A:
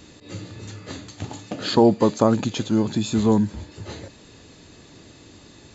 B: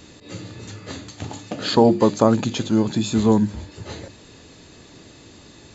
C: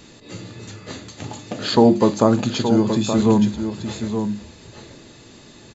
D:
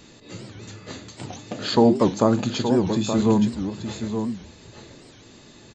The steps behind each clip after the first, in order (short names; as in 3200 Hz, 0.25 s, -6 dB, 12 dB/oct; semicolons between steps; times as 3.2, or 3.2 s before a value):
notches 50/100/150/200/250/300/350 Hz; gain +2 dB
echo 0.873 s -8 dB; on a send at -10.5 dB: reverb RT60 0.20 s, pre-delay 5 ms
record warp 78 rpm, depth 250 cents; gain -3 dB